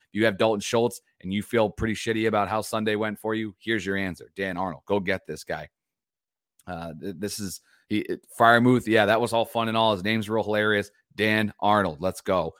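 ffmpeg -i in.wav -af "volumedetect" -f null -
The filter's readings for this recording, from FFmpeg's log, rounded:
mean_volume: -25.4 dB
max_volume: -3.4 dB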